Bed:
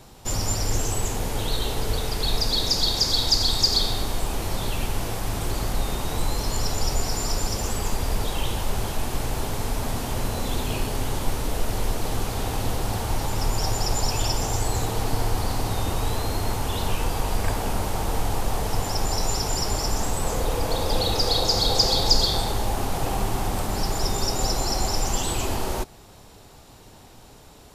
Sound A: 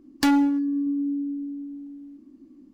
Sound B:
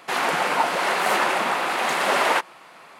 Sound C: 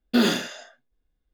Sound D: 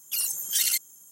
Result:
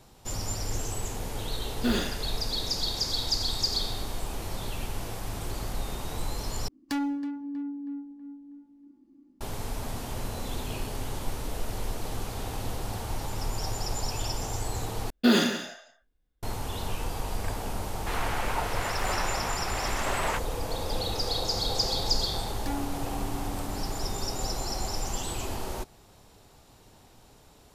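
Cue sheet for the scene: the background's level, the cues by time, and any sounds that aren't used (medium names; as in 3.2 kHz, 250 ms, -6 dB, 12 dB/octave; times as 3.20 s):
bed -7.5 dB
1.70 s: add C -7.5 dB
6.68 s: replace with A -10 dB + tape echo 321 ms, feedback 59%, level -11 dB, low-pass 2 kHz
15.10 s: replace with C -1 dB + delay 176 ms -13 dB
17.98 s: add B -10.5 dB
22.43 s: add A -16 dB
not used: D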